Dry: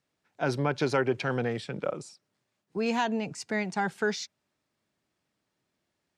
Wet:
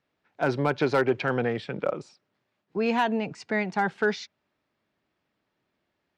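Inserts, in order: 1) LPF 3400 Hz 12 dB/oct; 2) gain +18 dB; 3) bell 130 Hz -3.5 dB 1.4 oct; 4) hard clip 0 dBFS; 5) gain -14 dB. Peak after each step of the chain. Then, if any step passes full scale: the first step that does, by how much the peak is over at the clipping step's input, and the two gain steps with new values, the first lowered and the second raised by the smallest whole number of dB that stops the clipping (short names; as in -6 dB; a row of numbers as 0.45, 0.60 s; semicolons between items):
-13.0, +5.0, +5.0, 0.0, -14.0 dBFS; step 2, 5.0 dB; step 2 +13 dB, step 5 -9 dB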